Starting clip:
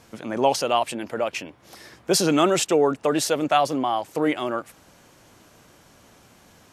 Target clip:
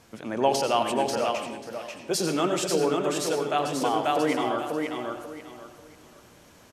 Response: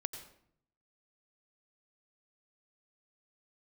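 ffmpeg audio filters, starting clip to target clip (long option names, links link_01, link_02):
-filter_complex "[0:a]aecho=1:1:539|1078|1617|2156:0.631|0.164|0.0427|0.0111,asettb=1/sr,asplit=3[link_01][link_02][link_03];[link_01]atrim=end=1.314[link_04];[link_02]atrim=start=1.31:end=3.82,asetpts=PTS-STARTPTS,afade=type=in:duration=0.004:curve=qsin,afade=type=out:start_time=2.506:duration=0.004:curve=qsin,flanger=delay=4.7:depth=3.3:regen=-53:speed=1.9:shape=sinusoidal[link_05];[link_03]atrim=start=3.816[link_06];[link_04][link_05]acrossfade=duration=0.004:curve1=hsin:curve2=qsin[link_07];[link_07][link_06]acrossfade=duration=0.004:curve1=qsin:curve2=hsin[link_08];[1:a]atrim=start_sample=2205[link_09];[link_08][link_09]afir=irnorm=-1:irlink=0,volume=-2dB"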